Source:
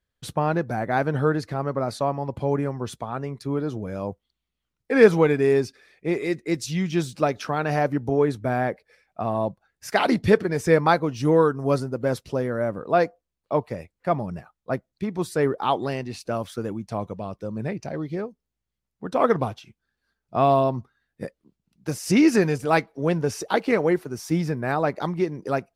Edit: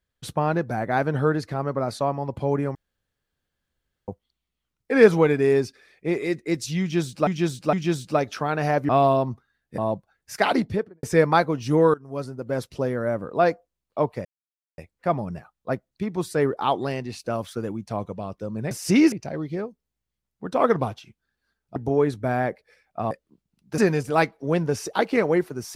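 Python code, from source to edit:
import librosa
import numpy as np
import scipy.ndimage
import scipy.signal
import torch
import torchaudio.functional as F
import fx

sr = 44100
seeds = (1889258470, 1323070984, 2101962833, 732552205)

y = fx.studio_fade_out(x, sr, start_s=9.99, length_s=0.58)
y = fx.edit(y, sr, fx.room_tone_fill(start_s=2.75, length_s=1.33),
    fx.repeat(start_s=6.81, length_s=0.46, count=3),
    fx.swap(start_s=7.97, length_s=1.35, other_s=20.36, other_length_s=0.89),
    fx.fade_in_from(start_s=11.48, length_s=0.88, floor_db=-18.5),
    fx.insert_silence(at_s=13.79, length_s=0.53),
    fx.move(start_s=21.92, length_s=0.41, to_s=17.72), tone=tone)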